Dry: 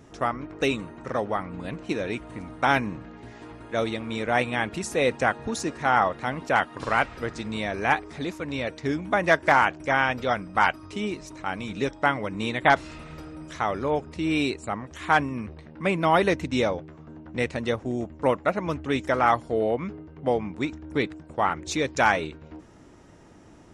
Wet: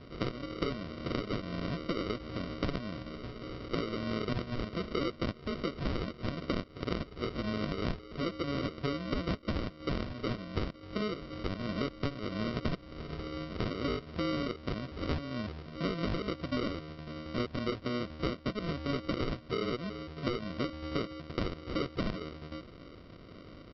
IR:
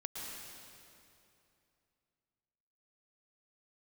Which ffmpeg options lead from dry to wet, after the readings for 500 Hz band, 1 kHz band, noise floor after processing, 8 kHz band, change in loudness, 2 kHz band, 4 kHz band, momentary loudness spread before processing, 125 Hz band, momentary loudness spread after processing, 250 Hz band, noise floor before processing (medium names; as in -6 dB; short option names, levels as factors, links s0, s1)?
-10.5 dB, -17.5 dB, -51 dBFS, under -20 dB, -10.5 dB, -16.5 dB, -5.5 dB, 13 LU, -3.0 dB, 7 LU, -5.0 dB, -49 dBFS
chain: -af "aresample=11025,acrusher=samples=13:mix=1:aa=0.000001,aresample=44100,acompressor=threshold=0.0282:ratio=10,volume=1.12"